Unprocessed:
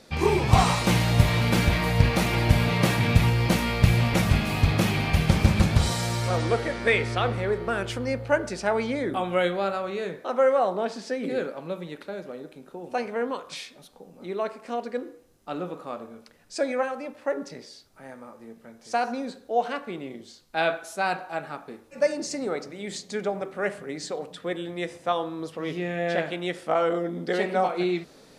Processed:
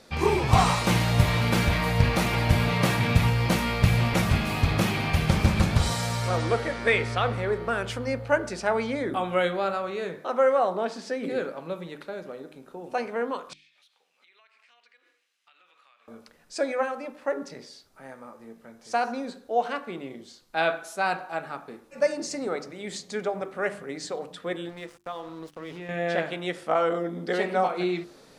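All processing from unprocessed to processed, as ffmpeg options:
-filter_complex "[0:a]asettb=1/sr,asplit=3[a][b][c];[a]atrim=end=13.534[d];[b]atrim=start=13.53:end=16.08,asetpts=PTS-STARTPTS,afade=t=in:d=0.004:c=qsin,afade=t=out:st=2.546:d=0.004:c=qsin,highpass=f=2.5k:t=q:w=1.9,aemphasis=mode=reproduction:type=bsi,acompressor=threshold=-57dB:ratio=6:attack=3.2:release=140:knee=1:detection=peak[e];[c]atrim=start=16.076[f];[d][e]acrossfade=d=0.004:c1=hsin:c2=qsin[g];[g][f]acrossfade=d=0.004:c1=qsin:c2=hsin,asettb=1/sr,asplit=3[h][i][j];[h]atrim=end=24.694[k];[i]atrim=start=24.69:end=25.89,asetpts=PTS-STARTPTS,afade=t=in:d=0.004:c=qsin,afade=t=out:st=1.196:d=0.004:c=qsin,aeval=exprs='sgn(val(0))*max(abs(val(0))-0.00668,0)':c=same,acompressor=threshold=-35dB:ratio=2.5:attack=3.2:release=140:knee=1:detection=peak[l];[j]atrim=start=25.886[m];[k][l]acrossfade=d=0.004:c1=hsin:c2=qsin[n];[n][m]acrossfade=d=0.004:c1=qsin:c2=hsin,equalizer=f=1.2k:w=1.5:g=2.5,bandreject=f=50:t=h:w=6,bandreject=f=100:t=h:w=6,bandreject=f=150:t=h:w=6,bandreject=f=200:t=h:w=6,bandreject=f=250:t=h:w=6,bandreject=f=300:t=h:w=6,bandreject=f=350:t=h:w=6,volume=-1dB"

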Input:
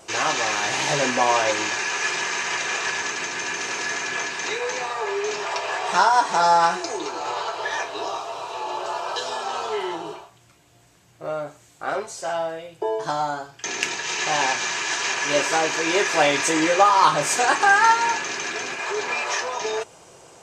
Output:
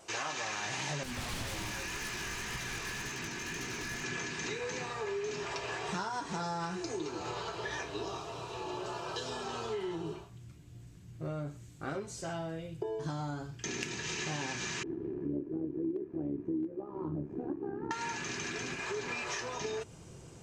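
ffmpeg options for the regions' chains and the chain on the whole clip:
-filter_complex "[0:a]asettb=1/sr,asplit=3[a][b][c];[a]atrim=end=1.034[d];[b]atrim=start=1.03:end=4.04,asetpts=PTS-STARTPTS,afade=t=in:d=0.004:c=qsin,afade=t=out:st=3.006:d=0.004:c=qsin,aecho=1:1:300:0.251,atrim=end_sample=132741,flanger=delay=15:depth=7.3:speed=1.9,aeval=exprs='0.0596*(abs(mod(val(0)/0.0596+3,4)-2)-1)':c=same[e];[c]atrim=start=4.036[f];[d][e]acrossfade=d=0.004:c1=hsin:c2=qsin[g];[g][f]acrossfade=d=0.004:c1=qsin:c2=hsin,asettb=1/sr,asplit=3[h][i][j];[h]atrim=end=14.834[k];[i]atrim=start=14.83:end=17.91,asetpts=PTS-STARTPTS,afade=t=in:d=0.004:c=qsin,afade=t=out:st=3.076:d=0.004:c=qsin,tremolo=f=69:d=0.667,lowpass=f=340:t=q:w=4.2[l];[j]atrim=start=17.906[m];[k][l]acrossfade=d=0.004:c1=hsin:c2=qsin[n];[n][m]acrossfade=d=0.004:c1=qsin:c2=hsin,asubboost=boost=10.5:cutoff=220,acompressor=threshold=-25dB:ratio=6,volume=-8.5dB"

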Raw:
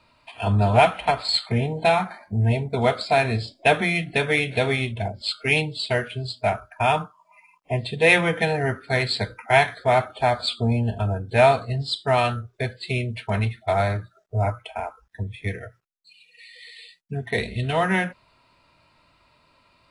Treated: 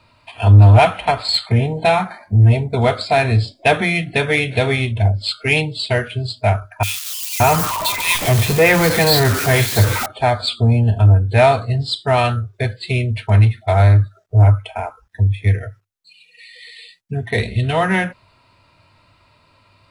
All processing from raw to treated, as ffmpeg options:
-filter_complex "[0:a]asettb=1/sr,asplit=3[a][b][c];[a]atrim=end=6.834[d];[b]atrim=start=6.83:end=10.06,asetpts=PTS-STARTPTS,afade=t=in:d=0.004:c=qsin,afade=t=out:st=3.226:d=0.004:c=qsin,aeval=exprs='val(0)+0.5*0.0891*sgn(val(0))':c=same,highshelf=f=7.7k:g=9,acrossover=split=2600[e][f];[e]adelay=570[g];[g][f]amix=inputs=2:normalize=0,atrim=end_sample=142443[h];[c]atrim=start=10.056[i];[d][h]acrossfade=d=0.004:c1=hsin:c2=qsin[j];[j][i]acrossfade=d=0.004:c1=qsin:c2=hsin,equalizer=f=100:w=4.4:g=13.5,acontrast=47,volume=-1dB"

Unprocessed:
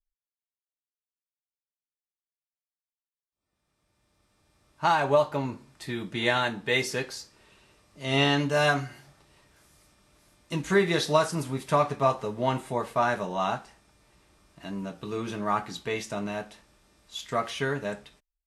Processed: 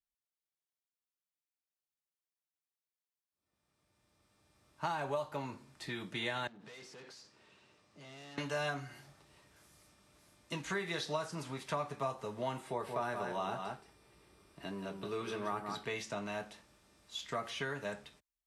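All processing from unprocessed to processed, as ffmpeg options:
-filter_complex "[0:a]asettb=1/sr,asplit=3[a][b][c];[a]atrim=end=6.474[d];[b]atrim=start=6.47:end=8.38,asetpts=PTS-STARTPTS,afade=t=in:d=0.004:c=qsin,afade=t=out:st=1.906:d=0.004:c=qsin,aeval=exprs='(tanh(79.4*val(0)+0.5)-tanh(0.5))/79.4':c=same,acompressor=threshold=-45dB:ratio=12:attack=3.2:release=140:knee=1:detection=peak,highpass=110,lowpass=6.9k[e];[c]atrim=start=8.376[f];[d][e]acrossfade=d=0.004:c1=hsin:c2=qsin[g];[g][f]acrossfade=d=0.004:c1=qsin:c2=hsin,asettb=1/sr,asplit=3[h][i][j];[h]atrim=end=12.684[k];[i]atrim=start=12.68:end=15.85,asetpts=PTS-STARTPTS,afade=t=in:d=0.004:c=qsin,afade=t=out:st=3.166:d=0.004:c=qsin,equalizer=f=400:w=3.7:g=7.5,bandreject=f=6.7k:w=6,aecho=1:1:176:0.398,atrim=end_sample=139797[l];[j]atrim=start=15.846[m];[k][l]acrossfade=d=0.004:c1=hsin:c2=qsin[n];[n][m]acrossfade=d=0.004:c1=qsin:c2=hsin,highpass=62,acrossover=split=110|590|7300[o][p][q][r];[o]acompressor=threshold=-53dB:ratio=4[s];[p]acompressor=threshold=-40dB:ratio=4[t];[q]acompressor=threshold=-34dB:ratio=4[u];[r]acompressor=threshold=-60dB:ratio=4[v];[s][t][u][v]amix=inputs=4:normalize=0,volume=-3.5dB"

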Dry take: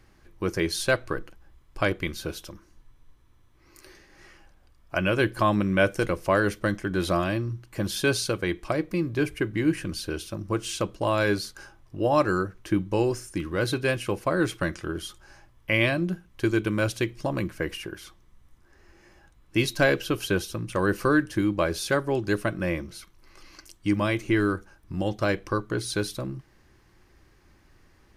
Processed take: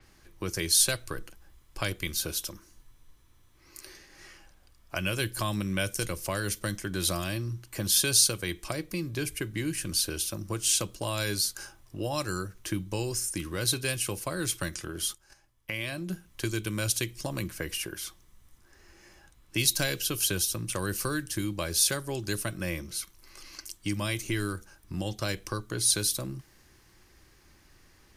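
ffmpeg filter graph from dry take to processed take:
-filter_complex "[0:a]asettb=1/sr,asplit=3[a][b][c];[a]atrim=end=14.684[d];[b]atrim=start=14.68:end=16.1,asetpts=PTS-STARTPTS,afade=t=in:d=0.004:c=qsin,afade=t=out:st=1.416:d=0.004:c=qsin,agate=range=-12dB:threshold=-49dB:ratio=16:release=100:detection=peak,acompressor=threshold=-31dB:ratio=2.5:attack=3.2:release=140:knee=1:detection=peak[e];[c]atrim=start=16.096[f];[d][e]acrossfade=d=0.004:c1=hsin:c2=qsin[g];[g][f]acrossfade=d=0.004:c1=qsin:c2=hsin,highshelf=f=3k:g=10.5,acrossover=split=150|3000[h][i][j];[i]acompressor=threshold=-33dB:ratio=2.5[k];[h][k][j]amix=inputs=3:normalize=0,adynamicequalizer=threshold=0.00891:dfrequency=6100:dqfactor=0.7:tfrequency=6100:tqfactor=0.7:attack=5:release=100:ratio=0.375:range=3:mode=boostabove:tftype=highshelf,volume=-2dB"

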